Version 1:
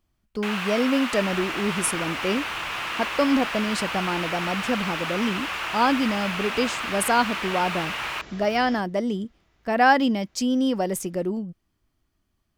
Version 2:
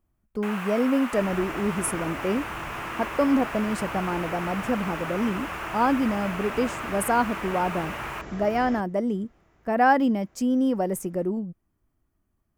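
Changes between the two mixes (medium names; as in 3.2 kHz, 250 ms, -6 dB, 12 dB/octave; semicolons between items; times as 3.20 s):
second sound +7.0 dB; master: add peaking EQ 4 kHz -14.5 dB 1.6 oct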